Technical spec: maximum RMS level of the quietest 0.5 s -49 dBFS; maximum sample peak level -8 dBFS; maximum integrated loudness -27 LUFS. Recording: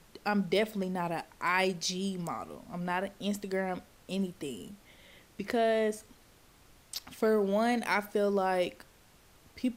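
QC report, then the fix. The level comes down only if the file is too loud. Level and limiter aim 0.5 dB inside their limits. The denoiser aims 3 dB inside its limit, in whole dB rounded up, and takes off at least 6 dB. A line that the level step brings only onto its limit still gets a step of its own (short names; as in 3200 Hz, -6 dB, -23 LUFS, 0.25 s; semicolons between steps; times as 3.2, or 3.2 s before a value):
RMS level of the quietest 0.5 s -60 dBFS: OK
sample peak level -13.5 dBFS: OK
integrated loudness -32.0 LUFS: OK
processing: none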